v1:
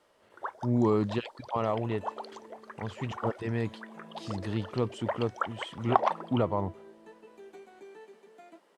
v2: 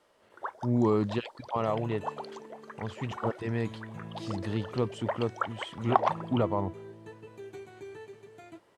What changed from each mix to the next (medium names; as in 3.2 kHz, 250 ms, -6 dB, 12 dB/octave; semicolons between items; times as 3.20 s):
second sound: remove rippled Chebyshev high-pass 170 Hz, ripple 6 dB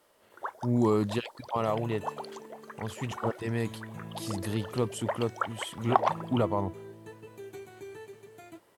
speech: remove distance through air 72 m; master: remove distance through air 54 m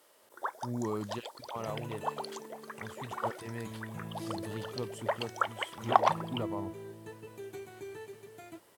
speech -10.0 dB; first sound: add treble shelf 3.1 kHz +6.5 dB